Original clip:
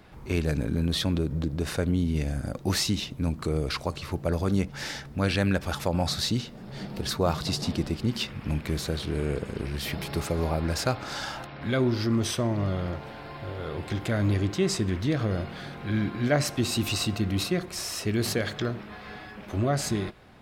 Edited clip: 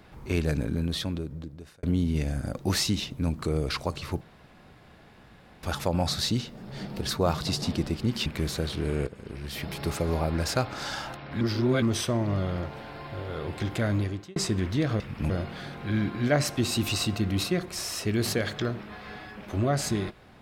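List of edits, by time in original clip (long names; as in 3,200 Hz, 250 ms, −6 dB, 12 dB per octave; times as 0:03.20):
0:00.53–0:01.83: fade out
0:04.21–0:05.63: fill with room tone
0:08.26–0:08.56: move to 0:15.30
0:09.37–0:10.22: fade in, from −13 dB
0:11.71–0:12.12: reverse
0:14.16–0:14.66: fade out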